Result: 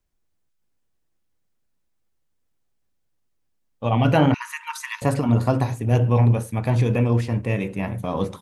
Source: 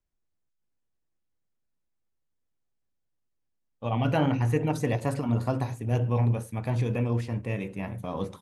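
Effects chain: 4.34–5.02 brick-wall FIR high-pass 890 Hz; gain +7.5 dB

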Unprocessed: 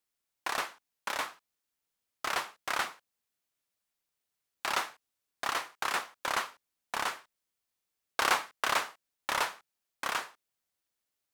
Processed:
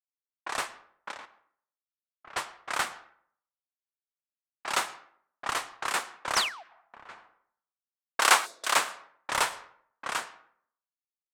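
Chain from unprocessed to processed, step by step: 1.11–2.36 level quantiser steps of 20 dB; 6.35–6.63 painted sound fall 620–6500 Hz -34 dBFS; 8.2–8.76 HPF 490 Hz 6 dB/oct; plate-style reverb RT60 1.1 s, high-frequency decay 0.6×, pre-delay 95 ms, DRR 13 dB; dynamic EQ 8300 Hz, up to +7 dB, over -55 dBFS, Q 2; 6.48–7.09 compressor 4:1, threshold -40 dBFS, peak gain reduction 11 dB; low-pass opened by the level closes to 1700 Hz, open at -27.5 dBFS; 8.46–8.66 spectral gain 710–3400 Hz -14 dB; three-band expander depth 100%

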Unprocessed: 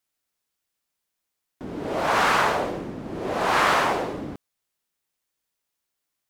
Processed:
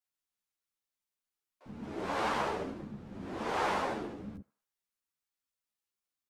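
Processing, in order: bands offset in time highs, lows 50 ms, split 710 Hz; formant shift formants -6 st; on a send: narrowing echo 78 ms, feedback 47%, band-pass 1200 Hz, level -18 dB; on the sum: ensemble effect; gain -7.5 dB

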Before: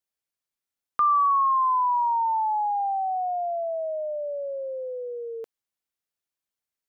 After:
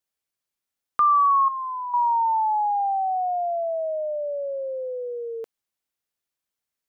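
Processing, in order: 1.48–1.94 band shelf 870 Hz -10.5 dB; gain +2.5 dB

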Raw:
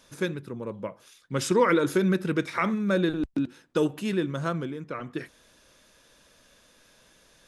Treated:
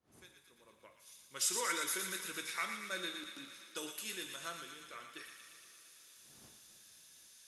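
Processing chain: opening faded in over 1.61 s; wind noise 150 Hz -44 dBFS; differentiator; on a send: thin delay 0.116 s, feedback 70%, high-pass 1400 Hz, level -6 dB; on the sum: two-slope reverb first 0.54 s, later 4.9 s, from -18 dB, DRR 5.5 dB; gain +1 dB

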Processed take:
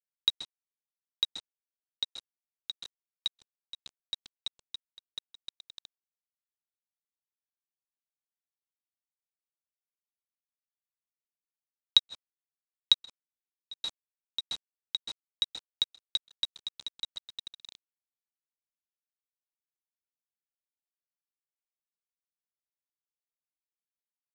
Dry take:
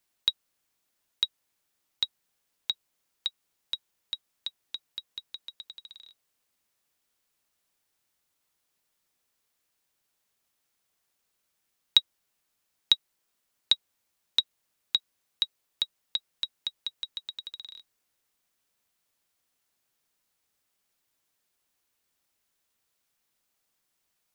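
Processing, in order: 15.43–17.15 G.711 law mismatch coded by mu; plate-style reverb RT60 0.72 s, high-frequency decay 0.3×, pre-delay 0.12 s, DRR 5 dB; bit-crush 6-bit; steep low-pass 8300 Hz 36 dB/oct; bell 1900 Hz -5 dB; beating tremolo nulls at 3.1 Hz

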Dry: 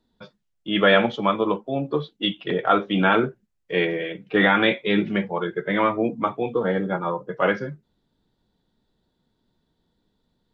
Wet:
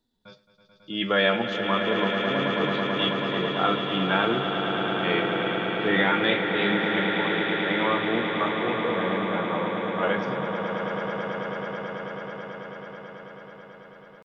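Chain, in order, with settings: high shelf 3700 Hz +8.5 dB; tempo 0.74×; on a send: swelling echo 0.109 s, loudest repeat 8, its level -9.5 dB; on the sum: gain -6.5 dB

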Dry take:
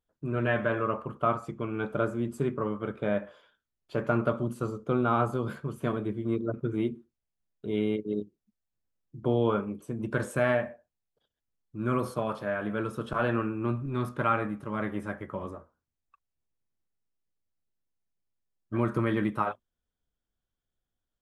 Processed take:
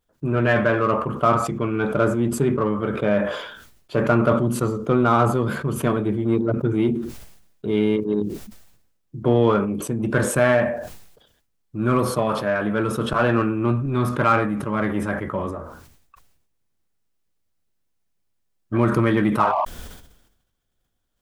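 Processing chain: painted sound noise, 19.39–19.65, 590–1200 Hz -30 dBFS; in parallel at -6 dB: soft clip -31 dBFS, distortion -6 dB; on the sum: sustainer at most 61 dB/s; gain +6.5 dB

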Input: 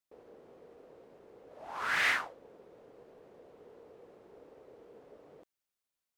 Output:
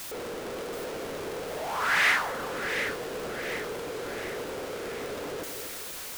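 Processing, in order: zero-crossing step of -36 dBFS; split-band echo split 1300 Hz, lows 0.238 s, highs 0.729 s, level -8 dB; gain +4.5 dB

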